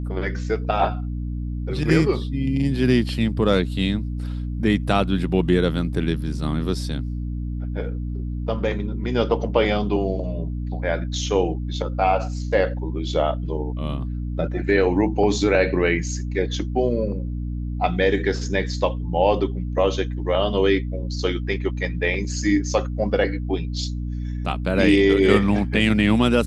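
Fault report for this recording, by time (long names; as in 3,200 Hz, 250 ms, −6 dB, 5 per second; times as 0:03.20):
mains hum 60 Hz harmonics 5 −27 dBFS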